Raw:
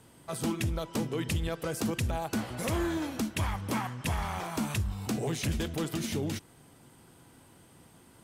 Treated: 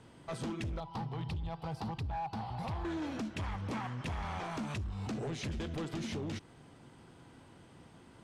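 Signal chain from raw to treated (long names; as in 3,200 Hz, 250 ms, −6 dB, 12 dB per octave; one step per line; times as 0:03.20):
0:00.80–0:02.85: drawn EQ curve 160 Hz 0 dB, 260 Hz −13 dB, 570 Hz −13 dB, 810 Hz +8 dB, 1,600 Hz −15 dB, 4,600 Hz −3 dB, 6,600 Hz −19 dB, 13,000 Hz −5 dB
downward compressor 10 to 1, threshold −33 dBFS, peak gain reduction 8 dB
hard clipping −34.5 dBFS, distortion −14 dB
high-frequency loss of the air 96 metres
level +1 dB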